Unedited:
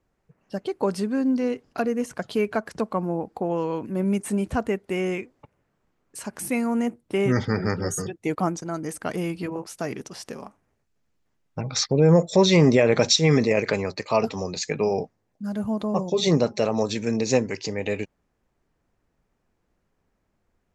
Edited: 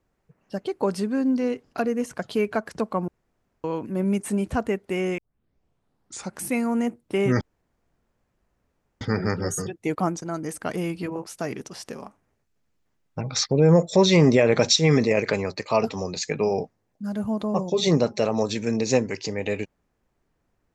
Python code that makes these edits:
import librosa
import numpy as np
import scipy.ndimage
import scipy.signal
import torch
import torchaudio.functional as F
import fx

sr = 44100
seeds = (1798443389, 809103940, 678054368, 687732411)

y = fx.edit(x, sr, fx.room_tone_fill(start_s=3.08, length_s=0.56),
    fx.tape_start(start_s=5.18, length_s=1.21),
    fx.insert_room_tone(at_s=7.41, length_s=1.6), tone=tone)